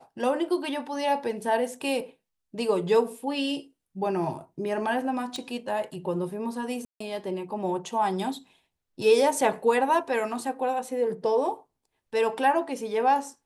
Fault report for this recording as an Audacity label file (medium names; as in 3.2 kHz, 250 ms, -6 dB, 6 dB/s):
5.360000	5.360000	pop -22 dBFS
6.850000	7.000000	dropout 154 ms